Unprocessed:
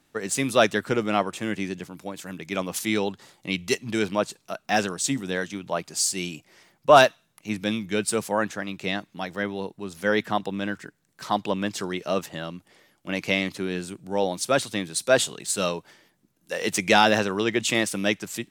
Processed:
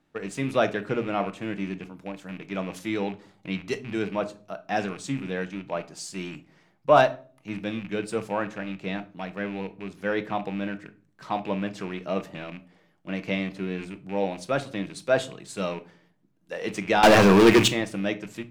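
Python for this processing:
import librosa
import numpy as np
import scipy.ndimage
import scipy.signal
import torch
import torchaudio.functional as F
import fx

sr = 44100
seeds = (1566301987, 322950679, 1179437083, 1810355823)

y = fx.rattle_buzz(x, sr, strikes_db=-37.0, level_db=-24.0)
y = fx.lowpass(y, sr, hz=1700.0, slope=6)
y = fx.leveller(y, sr, passes=5, at=(17.03, 17.68))
y = fx.room_shoebox(y, sr, seeds[0], volume_m3=300.0, walls='furnished', distance_m=0.58)
y = y * librosa.db_to_amplitude(-3.0)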